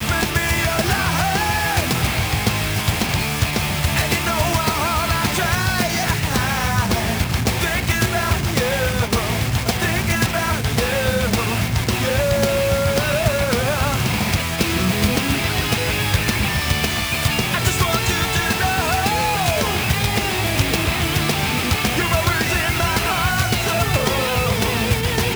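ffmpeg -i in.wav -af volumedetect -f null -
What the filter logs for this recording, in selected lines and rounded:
mean_volume: -19.2 dB
max_volume: -8.4 dB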